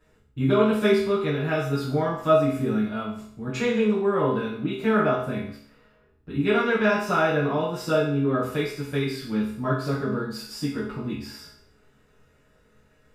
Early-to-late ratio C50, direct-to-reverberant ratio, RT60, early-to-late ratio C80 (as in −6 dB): 3.0 dB, −10.5 dB, 0.60 s, 7.5 dB